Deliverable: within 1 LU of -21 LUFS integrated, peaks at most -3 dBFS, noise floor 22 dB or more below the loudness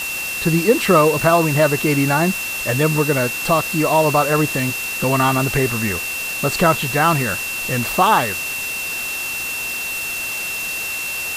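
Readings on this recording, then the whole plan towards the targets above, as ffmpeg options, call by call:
steady tone 2700 Hz; tone level -24 dBFS; noise floor -25 dBFS; noise floor target -40 dBFS; loudness -18.0 LUFS; peak -1.5 dBFS; loudness target -21.0 LUFS
-> -af "bandreject=f=2.7k:w=30"
-af "afftdn=nr=15:nf=-25"
-af "volume=-3dB"

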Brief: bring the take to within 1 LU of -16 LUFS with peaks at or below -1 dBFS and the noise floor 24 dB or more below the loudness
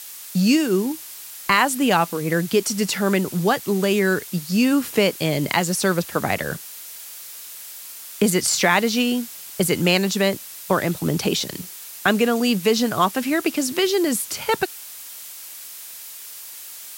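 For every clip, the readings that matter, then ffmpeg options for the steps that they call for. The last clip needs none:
noise floor -38 dBFS; noise floor target -45 dBFS; loudness -20.5 LUFS; peak -4.5 dBFS; loudness target -16.0 LUFS
-> -af "afftdn=nr=7:nf=-38"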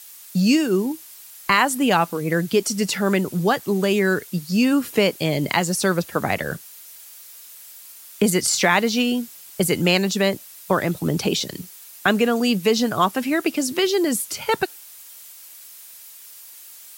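noise floor -43 dBFS; noise floor target -45 dBFS
-> -af "afftdn=nr=6:nf=-43"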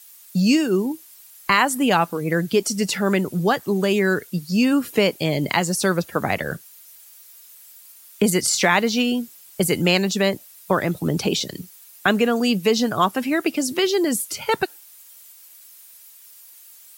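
noise floor -47 dBFS; loudness -21.0 LUFS; peak -4.5 dBFS; loudness target -16.0 LUFS
-> -af "volume=5dB,alimiter=limit=-1dB:level=0:latency=1"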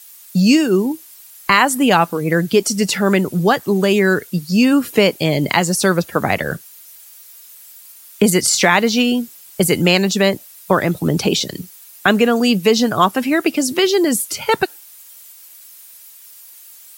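loudness -16.0 LUFS; peak -1.0 dBFS; noise floor -42 dBFS

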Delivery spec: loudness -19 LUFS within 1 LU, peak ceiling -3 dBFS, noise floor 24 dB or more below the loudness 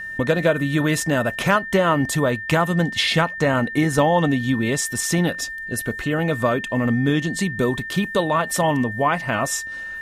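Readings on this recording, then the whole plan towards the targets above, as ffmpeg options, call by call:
steady tone 1800 Hz; tone level -29 dBFS; loudness -20.5 LUFS; peak -5.5 dBFS; loudness target -19.0 LUFS
-> -af "bandreject=f=1.8k:w=30"
-af "volume=1.5dB"

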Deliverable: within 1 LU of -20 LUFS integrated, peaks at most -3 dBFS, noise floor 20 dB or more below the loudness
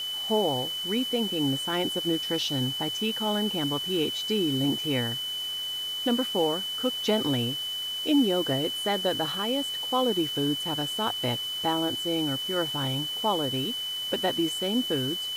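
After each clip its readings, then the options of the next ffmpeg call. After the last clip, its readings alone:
steady tone 3000 Hz; tone level -30 dBFS; noise floor -33 dBFS; noise floor target -47 dBFS; loudness -27.0 LUFS; peak -12.5 dBFS; loudness target -20.0 LUFS
-> -af "bandreject=f=3k:w=30"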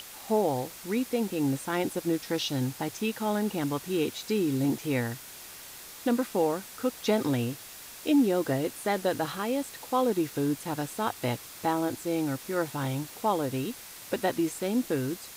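steady tone none; noise floor -46 dBFS; noise floor target -50 dBFS
-> -af "afftdn=nr=6:nf=-46"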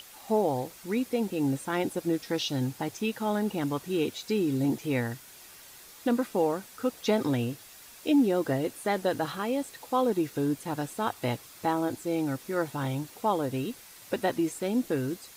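noise floor -50 dBFS; loudness -29.5 LUFS; peak -13.5 dBFS; loudness target -20.0 LUFS
-> -af "volume=9.5dB"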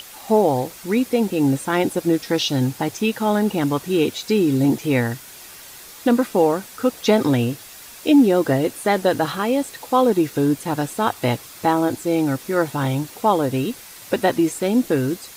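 loudness -20.0 LUFS; peak -4.0 dBFS; noise floor -41 dBFS

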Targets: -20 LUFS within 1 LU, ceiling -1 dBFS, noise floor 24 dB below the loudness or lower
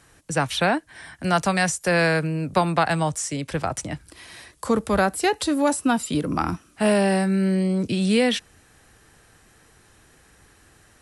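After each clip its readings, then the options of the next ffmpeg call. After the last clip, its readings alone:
loudness -22.5 LUFS; peak -7.5 dBFS; loudness target -20.0 LUFS
-> -af "volume=2.5dB"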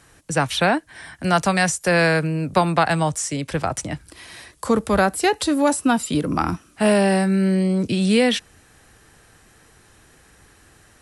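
loudness -20.0 LUFS; peak -5.0 dBFS; noise floor -54 dBFS

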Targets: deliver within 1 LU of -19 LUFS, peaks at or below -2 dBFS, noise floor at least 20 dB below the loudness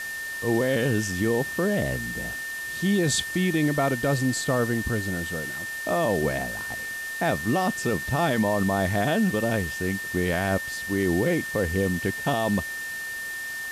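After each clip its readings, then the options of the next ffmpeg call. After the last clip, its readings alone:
steady tone 1800 Hz; tone level -31 dBFS; noise floor -33 dBFS; noise floor target -46 dBFS; loudness -25.5 LUFS; peak -13.0 dBFS; loudness target -19.0 LUFS
-> -af "bandreject=f=1.8k:w=30"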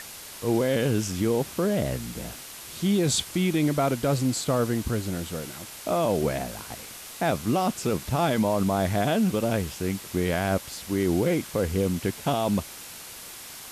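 steady tone none; noise floor -42 dBFS; noise floor target -46 dBFS
-> -af "afftdn=nr=6:nf=-42"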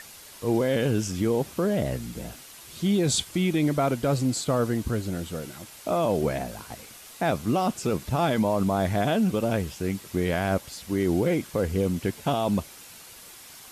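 noise floor -47 dBFS; loudness -26.0 LUFS; peak -14.5 dBFS; loudness target -19.0 LUFS
-> -af "volume=7dB"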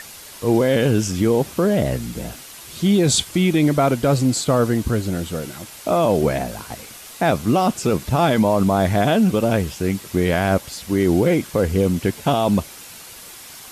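loudness -19.0 LUFS; peak -7.5 dBFS; noise floor -40 dBFS

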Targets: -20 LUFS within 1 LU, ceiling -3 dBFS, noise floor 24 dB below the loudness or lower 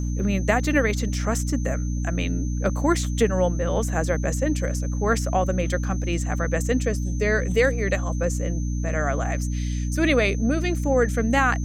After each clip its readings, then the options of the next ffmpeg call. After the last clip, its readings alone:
hum 60 Hz; harmonics up to 300 Hz; hum level -23 dBFS; steady tone 6200 Hz; tone level -42 dBFS; loudness -23.5 LUFS; peak -6.0 dBFS; loudness target -20.0 LUFS
-> -af "bandreject=f=60:t=h:w=4,bandreject=f=120:t=h:w=4,bandreject=f=180:t=h:w=4,bandreject=f=240:t=h:w=4,bandreject=f=300:t=h:w=4"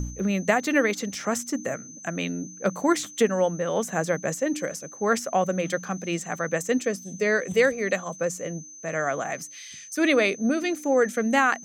hum none; steady tone 6200 Hz; tone level -42 dBFS
-> -af "bandreject=f=6.2k:w=30"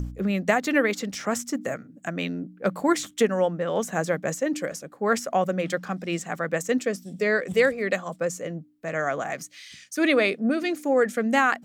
steady tone none; loudness -26.0 LUFS; peak -7.0 dBFS; loudness target -20.0 LUFS
-> -af "volume=6dB,alimiter=limit=-3dB:level=0:latency=1"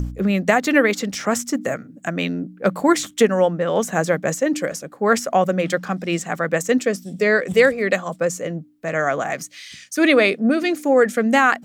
loudness -20.0 LUFS; peak -3.0 dBFS; noise floor -46 dBFS

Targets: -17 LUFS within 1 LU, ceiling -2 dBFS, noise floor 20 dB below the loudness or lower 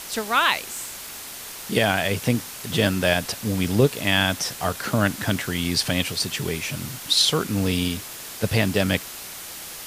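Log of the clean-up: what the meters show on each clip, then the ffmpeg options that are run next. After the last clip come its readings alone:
noise floor -37 dBFS; noise floor target -43 dBFS; loudness -22.5 LUFS; peak -4.0 dBFS; loudness target -17.0 LUFS
-> -af "afftdn=nr=6:nf=-37"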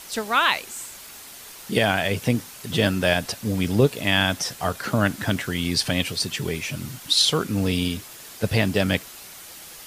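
noise floor -42 dBFS; noise floor target -43 dBFS
-> -af "afftdn=nr=6:nf=-42"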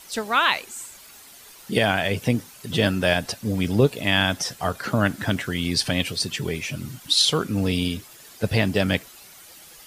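noise floor -47 dBFS; loudness -23.0 LUFS; peak -4.5 dBFS; loudness target -17.0 LUFS
-> -af "volume=6dB,alimiter=limit=-2dB:level=0:latency=1"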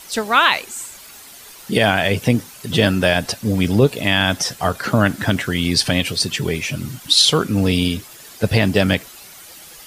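loudness -17.5 LUFS; peak -2.0 dBFS; noise floor -41 dBFS

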